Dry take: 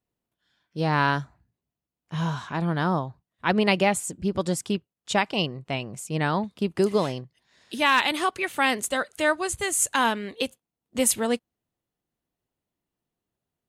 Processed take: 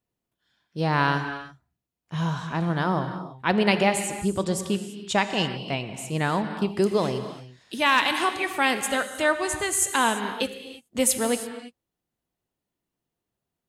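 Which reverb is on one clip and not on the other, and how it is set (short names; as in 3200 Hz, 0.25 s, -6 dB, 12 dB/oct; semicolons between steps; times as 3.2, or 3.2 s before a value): non-linear reverb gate 0.36 s flat, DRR 8 dB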